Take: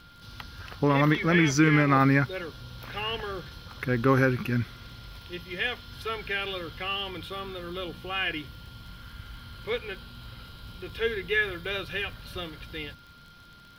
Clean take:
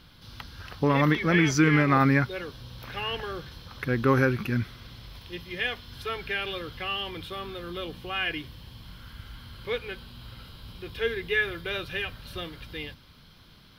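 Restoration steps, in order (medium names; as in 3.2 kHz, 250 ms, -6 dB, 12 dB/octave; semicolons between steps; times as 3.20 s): de-click; band-stop 1.4 kHz, Q 30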